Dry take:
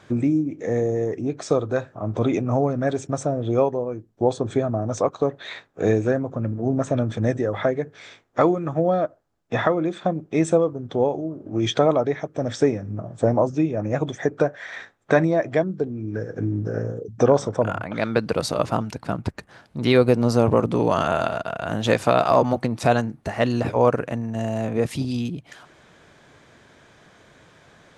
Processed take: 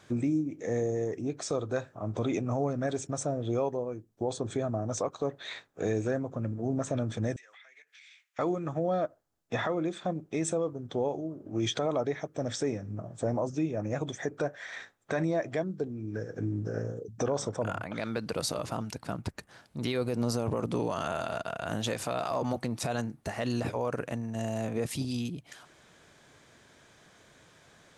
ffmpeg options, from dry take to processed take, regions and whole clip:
-filter_complex "[0:a]asettb=1/sr,asplit=3[a][b][c];[a]atrim=end=7.364[d];[b]atrim=start=7.36:end=8.39,asetpts=PTS-STARTPTS,afade=t=in:d=0.004:c=qsin,afade=t=out:st=1.026:d=0.004:c=qsin,highpass=f=2.3k:t=q:w=2.8,acompressor=threshold=-46dB:ratio=12:attack=3.2:release=140:knee=1:detection=peak[e];[c]atrim=start=8.386[f];[d][e]acrossfade=d=0.004:c1=hsin:c2=qsin[g];[g][f]acrossfade=d=0.004:c1=qsin:c2=hsin,highshelf=f=4.8k:g=10.5,alimiter=limit=-13dB:level=0:latency=1:release=39,volume=-7.5dB"

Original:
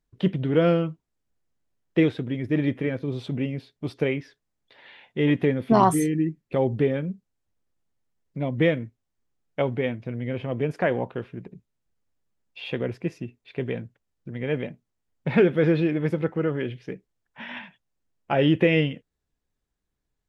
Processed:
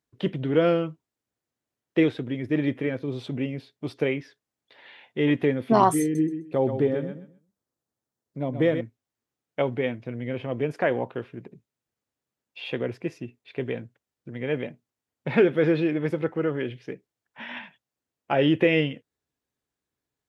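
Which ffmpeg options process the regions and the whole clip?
-filter_complex "[0:a]asettb=1/sr,asplit=3[a][b][c];[a]atrim=end=6.024[d];[b]atrim=start=6.02:end=8.81,asetpts=PTS-STARTPTS,afade=t=in:d=0.004:c=qsin,afade=t=out:st=2.786:d=0.004:c=qsin,equalizer=f=2.5k:w=1.3:g=-8,aecho=1:1:129|258|387:0.376|0.0752|0.015,atrim=end_sample=123039[e];[c]atrim=start=8.806[f];[d][e]acrossfade=d=0.004:c1=hsin:c2=qsin[g];[g][f]acrossfade=d=0.004:c1=qsin:c2=hsin,highpass=120,equalizer=f=180:t=o:w=0.38:g=-6.5"

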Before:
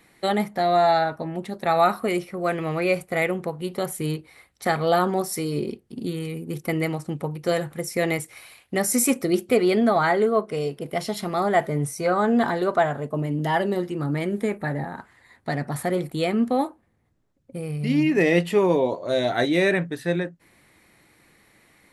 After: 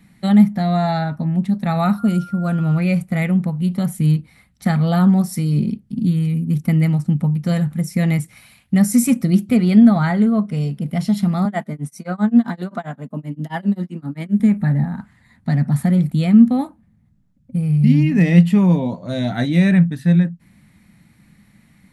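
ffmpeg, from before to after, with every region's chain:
-filter_complex "[0:a]asettb=1/sr,asplit=3[a][b][c];[a]atrim=end=1.984[d];[b]atrim=start=1.98:end=2.78,asetpts=PTS-STARTPTS,afade=t=in:d=0.004:c=qsin,afade=t=out:st=0.796:d=0.004:c=qsin,equalizer=f=2.1k:w=3.6:g=-14.5,aeval=exprs='val(0)+0.02*sin(2*PI*1400*n/s)':c=same[e];[c]atrim=start=2.776[f];[d][e]acrossfade=d=0.004:c1=hsin:c2=qsin[g];[g][f]acrossfade=d=0.004:c1=qsin:c2=hsin,asettb=1/sr,asplit=3[h][i][j];[h]atrim=end=11.454[k];[i]atrim=start=11.45:end=14.4,asetpts=PTS-STARTPTS,afade=t=in:d=0.004:c=qsin,afade=t=out:st=2.946:d=0.004:c=qsin,highpass=f=200:w=0.5412,highpass=f=200:w=1.3066,tremolo=f=7.6:d=0.98[l];[j]atrim=start=14.396[m];[k][l]acrossfade=d=0.004:c1=hsin:c2=qsin[n];[n][m]acrossfade=d=0.004:c1=qsin:c2=hsin,lowshelf=f=280:t=q:w=3:g=11,bandreject=f=1.1k:w=29,volume=-1.5dB"

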